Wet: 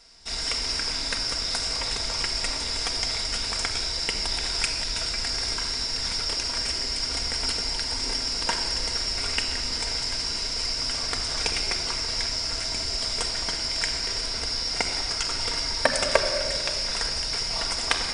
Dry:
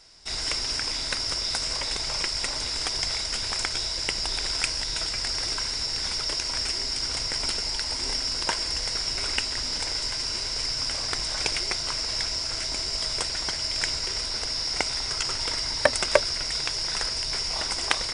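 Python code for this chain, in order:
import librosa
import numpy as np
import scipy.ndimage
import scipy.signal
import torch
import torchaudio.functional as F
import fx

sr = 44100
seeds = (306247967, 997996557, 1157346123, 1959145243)

y = fx.room_shoebox(x, sr, seeds[0], volume_m3=3800.0, walls='mixed', distance_m=1.7)
y = F.gain(torch.from_numpy(y), -1.0).numpy()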